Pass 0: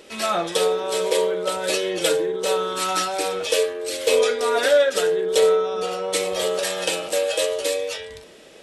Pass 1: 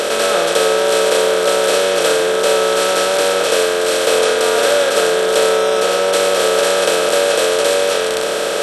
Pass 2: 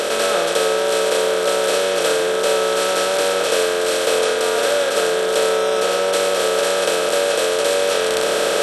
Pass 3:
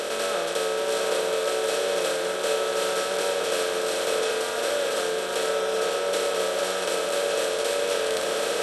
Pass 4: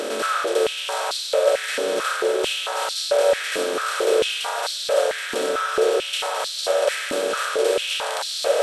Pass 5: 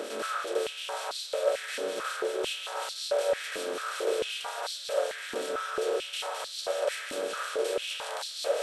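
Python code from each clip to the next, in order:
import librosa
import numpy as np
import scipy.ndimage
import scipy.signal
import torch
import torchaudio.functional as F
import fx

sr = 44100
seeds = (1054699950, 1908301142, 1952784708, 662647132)

y1 = fx.bin_compress(x, sr, power=0.2)
y1 = F.gain(torch.from_numpy(y1), -2.0).numpy()
y2 = fx.rider(y1, sr, range_db=10, speed_s=0.5)
y2 = F.gain(torch.from_numpy(y2), -3.5).numpy()
y3 = y2 + 10.0 ** (-5.5 / 20.0) * np.pad(y2, (int(775 * sr / 1000.0), 0))[:len(y2)]
y3 = F.gain(torch.from_numpy(y3), -8.5).numpy()
y4 = fx.filter_held_highpass(y3, sr, hz=4.5, low_hz=260.0, high_hz=4200.0)
y5 = fx.harmonic_tremolo(y4, sr, hz=5.4, depth_pct=50, crossover_hz=1900.0)
y5 = F.gain(torch.from_numpy(y5), -7.5).numpy()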